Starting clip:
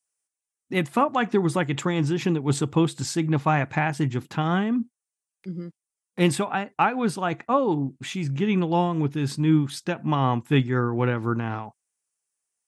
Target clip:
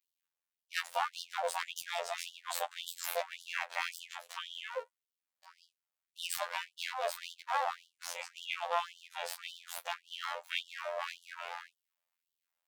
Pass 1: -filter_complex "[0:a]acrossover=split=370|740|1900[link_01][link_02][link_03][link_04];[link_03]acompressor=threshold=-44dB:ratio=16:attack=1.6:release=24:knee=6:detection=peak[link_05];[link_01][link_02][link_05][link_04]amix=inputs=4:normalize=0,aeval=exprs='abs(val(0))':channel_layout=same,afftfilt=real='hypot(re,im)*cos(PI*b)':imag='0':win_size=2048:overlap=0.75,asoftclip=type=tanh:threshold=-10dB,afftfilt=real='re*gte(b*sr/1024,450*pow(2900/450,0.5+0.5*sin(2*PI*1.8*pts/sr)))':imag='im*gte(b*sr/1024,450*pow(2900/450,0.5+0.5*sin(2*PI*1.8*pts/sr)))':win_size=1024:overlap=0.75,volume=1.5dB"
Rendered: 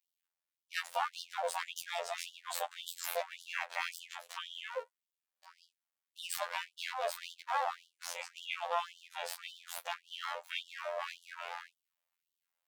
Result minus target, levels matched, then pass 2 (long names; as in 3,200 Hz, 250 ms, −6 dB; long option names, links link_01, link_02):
soft clipping: distortion +13 dB
-filter_complex "[0:a]acrossover=split=370|740|1900[link_01][link_02][link_03][link_04];[link_03]acompressor=threshold=-44dB:ratio=16:attack=1.6:release=24:knee=6:detection=peak[link_05];[link_01][link_02][link_05][link_04]amix=inputs=4:normalize=0,aeval=exprs='abs(val(0))':channel_layout=same,afftfilt=real='hypot(re,im)*cos(PI*b)':imag='0':win_size=2048:overlap=0.75,asoftclip=type=tanh:threshold=-2.5dB,afftfilt=real='re*gte(b*sr/1024,450*pow(2900/450,0.5+0.5*sin(2*PI*1.8*pts/sr)))':imag='im*gte(b*sr/1024,450*pow(2900/450,0.5+0.5*sin(2*PI*1.8*pts/sr)))':win_size=1024:overlap=0.75,volume=1.5dB"